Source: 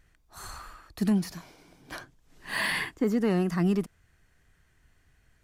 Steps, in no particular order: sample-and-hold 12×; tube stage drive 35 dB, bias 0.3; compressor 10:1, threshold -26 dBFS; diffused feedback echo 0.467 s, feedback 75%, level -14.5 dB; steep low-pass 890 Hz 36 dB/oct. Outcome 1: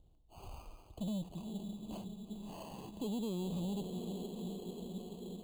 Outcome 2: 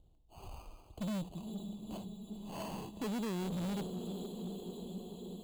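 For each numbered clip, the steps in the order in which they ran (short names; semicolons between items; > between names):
diffused feedback echo > compressor > tube stage > steep low-pass > sample-and-hold; steep low-pass > sample-and-hold > diffused feedback echo > tube stage > compressor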